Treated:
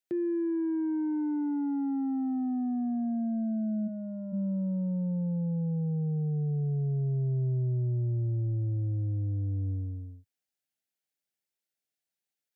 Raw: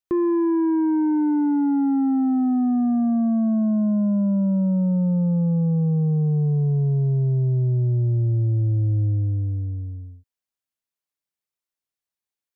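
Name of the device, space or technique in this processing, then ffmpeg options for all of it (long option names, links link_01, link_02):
PA system with an anti-feedback notch: -filter_complex "[0:a]highpass=frequency=100:width=0.5412,highpass=frequency=100:width=1.3066,asuperstop=centerf=1100:order=4:qfactor=2.3,alimiter=level_in=2dB:limit=-24dB:level=0:latency=1,volume=-2dB,asplit=3[link_01][link_02][link_03];[link_01]afade=type=out:start_time=3.87:duration=0.02[link_04];[link_02]highpass=290,afade=type=in:start_time=3.87:duration=0.02,afade=type=out:start_time=4.32:duration=0.02[link_05];[link_03]afade=type=in:start_time=4.32:duration=0.02[link_06];[link_04][link_05][link_06]amix=inputs=3:normalize=0"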